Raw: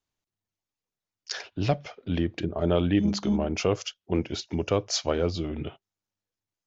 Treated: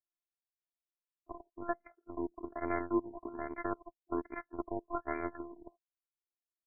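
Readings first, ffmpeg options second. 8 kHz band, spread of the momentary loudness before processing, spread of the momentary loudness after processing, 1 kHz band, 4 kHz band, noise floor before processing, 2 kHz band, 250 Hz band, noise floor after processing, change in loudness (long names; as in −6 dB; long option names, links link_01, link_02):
can't be measured, 11 LU, 14 LU, −3.5 dB, below −40 dB, below −85 dBFS, −7.5 dB, −12.0 dB, below −85 dBFS, −11.5 dB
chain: -filter_complex "[0:a]lowshelf=frequency=120:gain=-12,asplit=2[link_01][link_02];[link_02]alimiter=limit=-22.5dB:level=0:latency=1:release=28,volume=0dB[link_03];[link_01][link_03]amix=inputs=2:normalize=0,acrusher=samples=8:mix=1:aa=0.000001,adynamicsmooth=sensitivity=6:basefreq=4300,aexciter=amount=1.9:drive=4:freq=3300,afftfilt=real='hypot(re,im)*cos(PI*b)':imag='0':win_size=512:overlap=0.75,aeval=exprs='0.422*(cos(1*acos(clip(val(0)/0.422,-1,1)))-cos(1*PI/2))+0.00944*(cos(4*acos(clip(val(0)/0.422,-1,1)))-cos(4*PI/2))+0.0075*(cos(5*acos(clip(val(0)/0.422,-1,1)))-cos(5*PI/2))+0.0596*(cos(7*acos(clip(val(0)/0.422,-1,1)))-cos(7*PI/2))':channel_layout=same,aresample=11025,acrusher=bits=6:mode=log:mix=0:aa=0.000001,aresample=44100,afftfilt=real='re*lt(b*sr/1024,980*pow(2400/980,0.5+0.5*sin(2*PI*1.2*pts/sr)))':imag='im*lt(b*sr/1024,980*pow(2400/980,0.5+0.5*sin(2*PI*1.2*pts/sr)))':win_size=1024:overlap=0.75,volume=-2.5dB"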